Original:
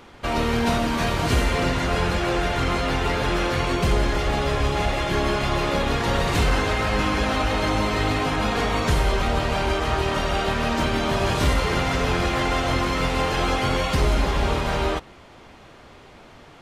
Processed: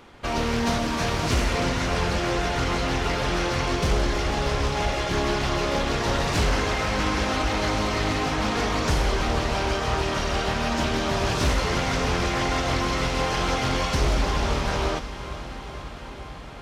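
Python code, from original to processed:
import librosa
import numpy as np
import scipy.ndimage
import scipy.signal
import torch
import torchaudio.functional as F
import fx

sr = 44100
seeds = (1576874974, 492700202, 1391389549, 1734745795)

y = fx.echo_diffused(x, sr, ms=486, feedback_pct=78, wet_db=-14)
y = fx.dynamic_eq(y, sr, hz=5600.0, q=2.3, threshold_db=-51.0, ratio=4.0, max_db=7)
y = fx.doppler_dist(y, sr, depth_ms=0.31)
y = y * librosa.db_to_amplitude(-2.5)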